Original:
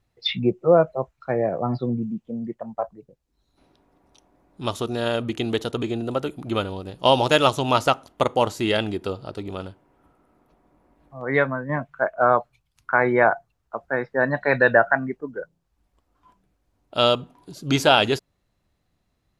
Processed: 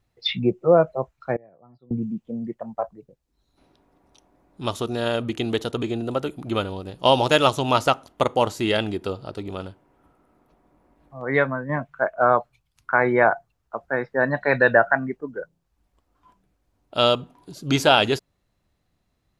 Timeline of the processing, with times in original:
0:01.36–0:01.91: gate with flip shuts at −25 dBFS, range −28 dB

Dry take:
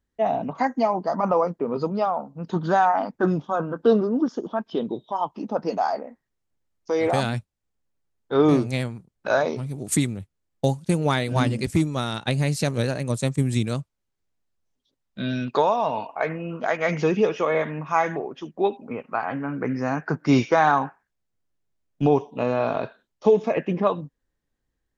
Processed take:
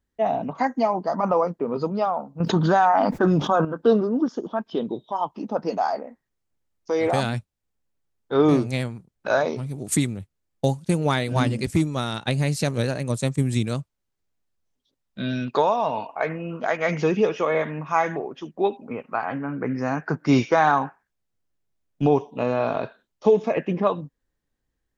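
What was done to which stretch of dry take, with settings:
0:02.40–0:03.65: envelope flattener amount 70%
0:19.38–0:19.78: high-frequency loss of the air 170 metres

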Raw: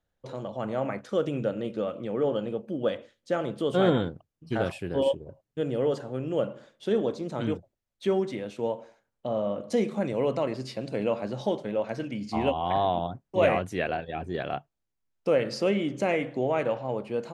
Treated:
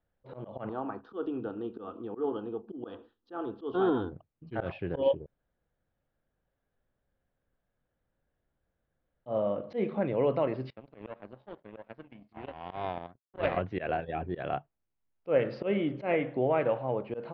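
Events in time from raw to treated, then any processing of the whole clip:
0:00.69–0:04.12: phaser with its sweep stopped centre 570 Hz, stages 6
0:05.26–0:09.26: fill with room tone
0:10.70–0:13.57: power curve on the samples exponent 2
whole clip: Bessel low-pass filter 2,200 Hz, order 8; dynamic equaliser 220 Hz, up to −4 dB, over −46 dBFS, Q 3.1; volume swells 102 ms

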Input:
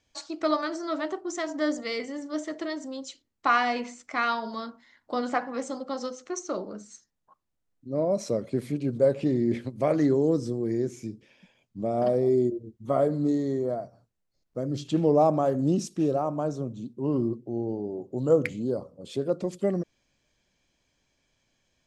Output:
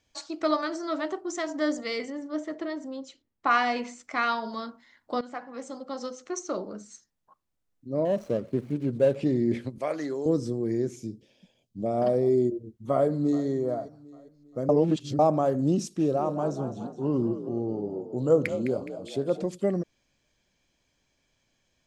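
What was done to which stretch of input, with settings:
0:02.10–0:03.51: high-shelf EQ 3,300 Hz −11.5 dB
0:05.21–0:06.32: fade in, from −14 dB
0:08.05–0:09.16: running median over 25 samples
0:09.78–0:10.26: high-pass filter 920 Hz 6 dB per octave
0:10.96–0:11.86: flat-topped bell 1,500 Hz −11 dB
0:12.92–0:13.48: delay throw 400 ms, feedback 45%, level −17 dB
0:14.69–0:15.19: reverse
0:15.89–0:19.46: echo with shifted repeats 209 ms, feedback 50%, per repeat +50 Hz, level −11 dB

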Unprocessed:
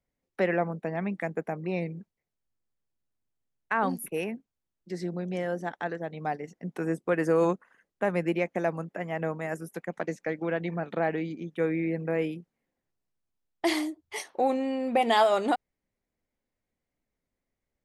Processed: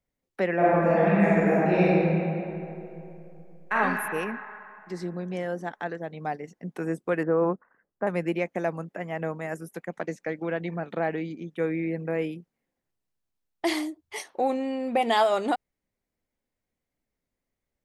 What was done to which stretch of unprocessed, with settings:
0:00.55–0:03.73: thrown reverb, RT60 2.8 s, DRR −10.5 dB
0:07.23–0:08.07: low-pass filter 1,600 Hz 24 dB per octave

